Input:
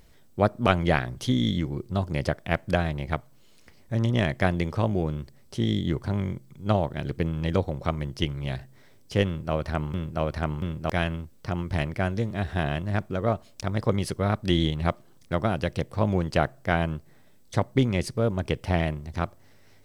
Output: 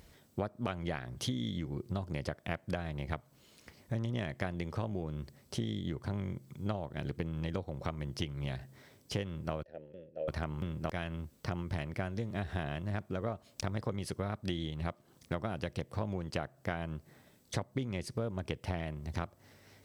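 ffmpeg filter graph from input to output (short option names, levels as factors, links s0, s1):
-filter_complex "[0:a]asettb=1/sr,asplit=3[s0][s1][s2];[s0]atrim=end=9.634[s3];[s1]atrim=start=9.63:end=10.28,asetpts=PTS-STARTPTS,afade=t=in:d=0.004:c=qsin,afade=t=out:st=0.646:d=0.004:c=qsin,asplit=3[s4][s5][s6];[s4]bandpass=f=530:t=q:w=8,volume=1[s7];[s5]bandpass=f=1840:t=q:w=8,volume=0.501[s8];[s6]bandpass=f=2480:t=q:w=8,volume=0.355[s9];[s7][s8][s9]amix=inputs=3:normalize=0,equalizer=f=2100:w=0.75:g=-14[s10];[s2]atrim=start=10.276[s11];[s3][s10]acrossfade=d=0.004:c1=hsin:c2=qsin[s12];[s12][s11]acrossfade=d=0.004:c1=qsin:c2=hsin,highpass=44,acompressor=threshold=0.0251:ratio=10"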